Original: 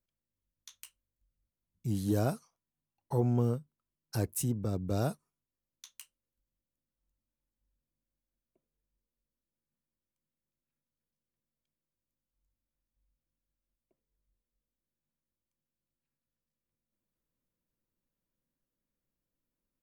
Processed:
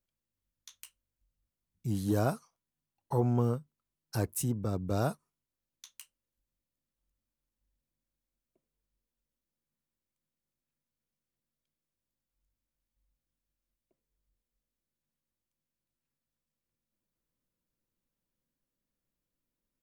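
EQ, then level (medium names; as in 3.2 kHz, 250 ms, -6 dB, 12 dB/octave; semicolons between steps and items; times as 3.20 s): dynamic bell 1.1 kHz, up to +6 dB, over -49 dBFS, Q 1.2; 0.0 dB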